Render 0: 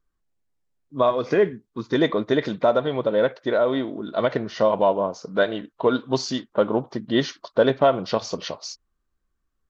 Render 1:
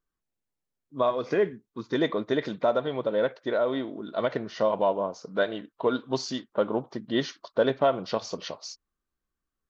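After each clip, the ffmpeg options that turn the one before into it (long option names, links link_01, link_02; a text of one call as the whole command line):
ffmpeg -i in.wav -af "lowshelf=frequency=77:gain=-8.5,volume=-5dB" out.wav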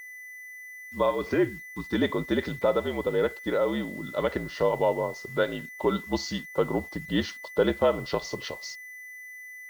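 ffmpeg -i in.wav -af "afreqshift=-57,aeval=exprs='val(0)+0.01*sin(2*PI*2000*n/s)':channel_layout=same,acrusher=bits=7:mix=0:aa=0.5" out.wav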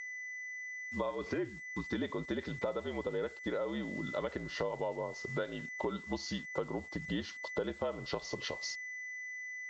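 ffmpeg -i in.wav -af "acompressor=threshold=-34dB:ratio=5,aresample=16000,aeval=exprs='val(0)*gte(abs(val(0)),0.0015)':channel_layout=same,aresample=44100" out.wav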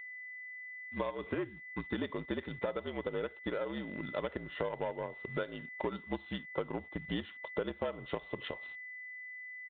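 ffmpeg -i in.wav -filter_complex "[0:a]asplit=2[link_01][link_02];[link_02]acrusher=bits=4:mix=0:aa=0.5,volume=-6.5dB[link_03];[link_01][link_03]amix=inputs=2:normalize=0,aresample=8000,aresample=44100,volume=-3dB" out.wav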